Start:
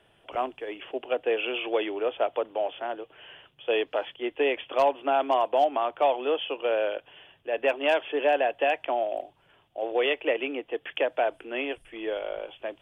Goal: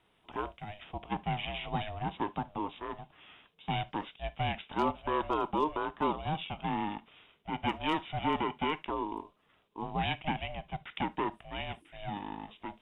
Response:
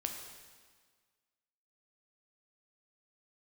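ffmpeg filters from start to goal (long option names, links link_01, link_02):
-filter_complex "[0:a]aeval=exprs='val(0)*sin(2*PI*310*n/s)':channel_layout=same,asplit=2[link_01][link_02];[1:a]atrim=start_sample=2205,atrim=end_sample=3528[link_03];[link_02][link_03]afir=irnorm=-1:irlink=0,volume=-7dB[link_04];[link_01][link_04]amix=inputs=2:normalize=0,volume=-7.5dB"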